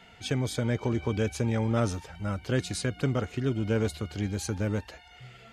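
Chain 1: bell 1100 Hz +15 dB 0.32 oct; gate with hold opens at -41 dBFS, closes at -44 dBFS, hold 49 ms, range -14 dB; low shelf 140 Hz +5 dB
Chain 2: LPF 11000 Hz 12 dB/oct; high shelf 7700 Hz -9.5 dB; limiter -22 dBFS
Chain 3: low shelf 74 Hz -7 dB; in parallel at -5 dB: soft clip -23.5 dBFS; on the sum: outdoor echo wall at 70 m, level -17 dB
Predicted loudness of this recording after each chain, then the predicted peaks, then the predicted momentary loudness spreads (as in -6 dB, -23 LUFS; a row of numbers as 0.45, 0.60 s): -28.0, -34.0, -28.0 LUFS; -10.0, -22.0, -11.0 dBFS; 6, 5, 7 LU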